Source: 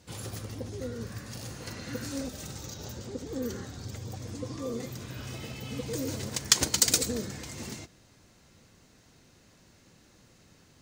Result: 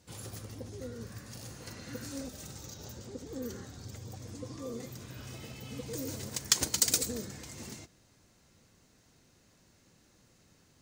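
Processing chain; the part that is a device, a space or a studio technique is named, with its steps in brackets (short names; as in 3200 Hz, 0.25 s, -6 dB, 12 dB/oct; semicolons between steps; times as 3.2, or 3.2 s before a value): exciter from parts (in parallel at -8 dB: HPF 4500 Hz 12 dB/oct + soft clip -27.5 dBFS, distortion -3 dB); 5.97–7.25 on the sum: high shelf 9600 Hz +4.5 dB; gain -5.5 dB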